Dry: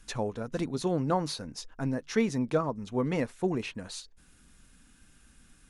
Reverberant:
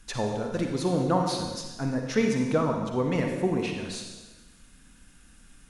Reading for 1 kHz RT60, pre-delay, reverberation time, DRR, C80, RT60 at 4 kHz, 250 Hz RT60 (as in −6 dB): 1.2 s, 40 ms, 1.2 s, 2.0 dB, 5.0 dB, 1.2 s, 1.2 s